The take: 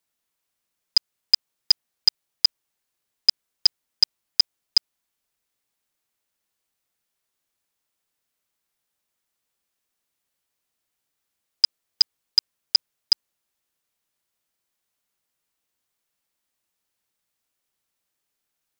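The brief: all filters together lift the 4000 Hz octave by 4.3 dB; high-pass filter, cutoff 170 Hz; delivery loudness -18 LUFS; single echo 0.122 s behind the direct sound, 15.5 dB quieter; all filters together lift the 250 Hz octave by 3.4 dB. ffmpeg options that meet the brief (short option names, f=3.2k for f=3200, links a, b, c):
-af "highpass=170,equalizer=f=250:t=o:g=5.5,equalizer=f=4k:t=o:g=6,aecho=1:1:122:0.168,volume=-0.5dB"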